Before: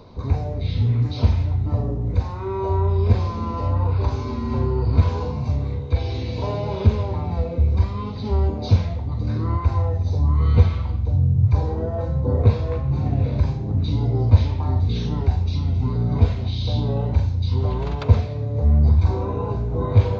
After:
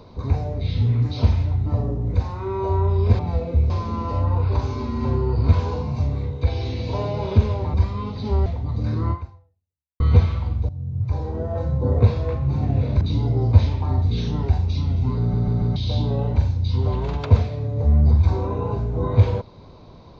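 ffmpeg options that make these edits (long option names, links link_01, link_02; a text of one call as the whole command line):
ffmpeg -i in.wav -filter_complex "[0:a]asplit=12[link_01][link_02][link_03][link_04][link_05][link_06][link_07][link_08][link_09][link_10][link_11][link_12];[link_01]atrim=end=3.192[link_13];[link_02]atrim=start=7.228:end=7.742[link_14];[link_03]atrim=start=3.188:end=7.232[link_15];[link_04]atrim=start=7.738:end=8.462[link_16];[link_05]atrim=start=8.888:end=10.43,asetpts=PTS-STARTPTS,afade=type=out:start_time=0.652:duration=0.89:curve=exp[link_17];[link_06]atrim=start=10.43:end=11.12,asetpts=PTS-STARTPTS,afade=type=in:duration=0.004:curve=hsin,afade=type=out:start_time=0.686:duration=0.004:curve=hsin:silence=0.133352[link_18];[link_07]atrim=start=11.12:end=13.442,asetpts=PTS-STARTPTS,afade=type=in:duration=0.93:silence=0.133352[link_19];[link_08]atrim=start=13.788:end=16.122[link_20];[link_09]atrim=start=15.978:end=16.122[link_21];[link_10]atrim=start=15.978:end=16.122[link_22];[link_11]atrim=start=15.978:end=16.122[link_23];[link_12]atrim=start=16.538[link_24];[link_13][link_14]acrossfade=duration=0.004:curve1=hsin:curve2=hsin[link_25];[link_25][link_15]acrossfade=duration=0.004:curve1=hsin:curve2=hsin[link_26];[link_26][link_16]acrossfade=duration=0.004:curve1=hsin:curve2=hsin[link_27];[link_17][link_18][link_19]concat=n=3:v=0:a=1[link_28];[link_27][link_28]acrossfade=duration=0.004:curve1=hsin:curve2=hsin[link_29];[link_29][link_20]acrossfade=duration=0.004:curve1=hsin:curve2=hsin[link_30];[link_30][link_21]acrossfade=duration=0.004:curve1=hsin:curve2=hsin[link_31];[link_31][link_22]acrossfade=duration=0.004:curve1=hsin:curve2=hsin[link_32];[link_32][link_23]acrossfade=duration=0.004:curve1=hsin:curve2=hsin[link_33];[link_33][link_24]acrossfade=duration=0.004:curve1=hsin:curve2=hsin" out.wav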